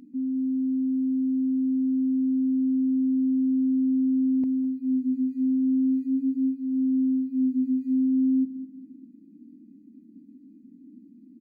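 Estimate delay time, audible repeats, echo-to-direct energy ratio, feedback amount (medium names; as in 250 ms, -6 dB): 206 ms, 3, -15.0 dB, 43%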